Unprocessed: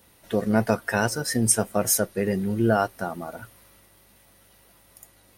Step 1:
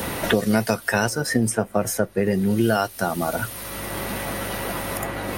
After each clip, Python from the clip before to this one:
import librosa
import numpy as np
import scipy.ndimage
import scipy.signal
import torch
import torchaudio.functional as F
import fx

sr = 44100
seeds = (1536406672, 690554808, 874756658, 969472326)

y = fx.band_squash(x, sr, depth_pct=100)
y = F.gain(torch.from_numpy(y), 2.5).numpy()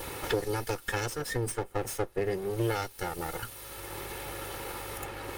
y = fx.lower_of_two(x, sr, delay_ms=2.3)
y = F.gain(torch.from_numpy(y), -9.0).numpy()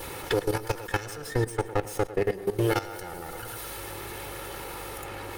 y = fx.echo_tape(x, sr, ms=108, feedback_pct=50, wet_db=-6.5, lp_hz=2600.0, drive_db=17.0, wow_cents=33)
y = fx.level_steps(y, sr, step_db=15)
y = F.gain(torch.from_numpy(y), 7.0).numpy()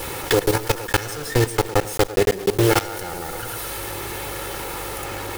y = fx.block_float(x, sr, bits=3)
y = F.gain(torch.from_numpy(y), 7.5).numpy()